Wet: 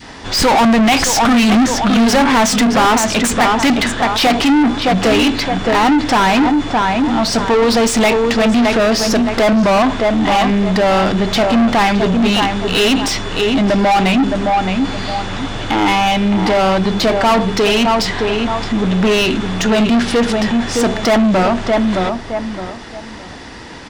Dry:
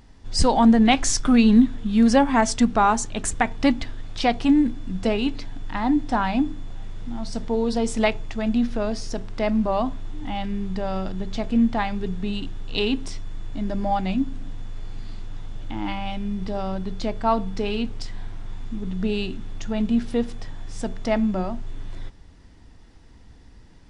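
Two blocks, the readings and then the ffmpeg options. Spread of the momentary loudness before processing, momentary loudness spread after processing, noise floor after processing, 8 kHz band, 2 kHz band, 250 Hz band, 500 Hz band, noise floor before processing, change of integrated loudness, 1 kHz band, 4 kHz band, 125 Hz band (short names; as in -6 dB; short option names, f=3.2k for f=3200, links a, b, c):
21 LU, 7 LU, -31 dBFS, +11.0 dB, +15.0 dB, +8.0 dB, +12.5 dB, -48 dBFS, +9.5 dB, +12.0 dB, +15.0 dB, +10.5 dB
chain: -filter_complex "[0:a]adynamicequalizer=threshold=0.02:dfrequency=690:dqfactor=0.76:tfrequency=690:tqfactor=0.76:attack=5:release=100:ratio=0.375:range=2:mode=cutabove:tftype=bell,asplit=2[a][b];[b]adelay=616,lowpass=f=1.9k:p=1,volume=-9dB,asplit=2[c][d];[d]adelay=616,lowpass=f=1.9k:p=1,volume=0.26,asplit=2[e][f];[f]adelay=616,lowpass=f=1.9k:p=1,volume=0.26[g];[a][c][e][g]amix=inputs=4:normalize=0,asplit=2[h][i];[i]highpass=f=720:p=1,volume=35dB,asoftclip=type=tanh:threshold=-4.5dB[j];[h][j]amix=inputs=2:normalize=0,lowpass=f=3.9k:p=1,volume=-6dB"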